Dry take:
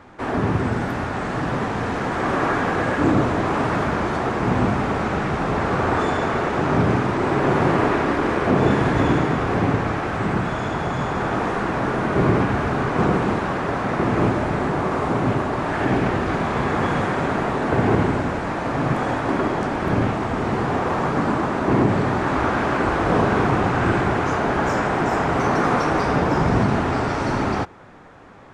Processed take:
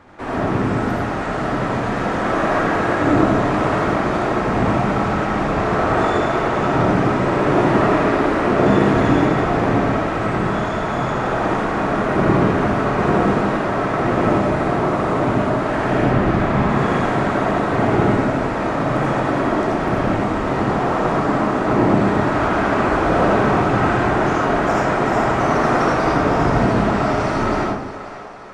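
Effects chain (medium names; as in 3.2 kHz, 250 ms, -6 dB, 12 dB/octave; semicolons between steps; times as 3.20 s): 16.03–16.70 s: tone controls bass +6 dB, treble -5 dB; on a send: two-band feedback delay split 420 Hz, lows 180 ms, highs 533 ms, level -13 dB; on the sum: algorithmic reverb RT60 0.69 s, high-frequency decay 0.35×, pre-delay 40 ms, DRR -3 dB; trim -2 dB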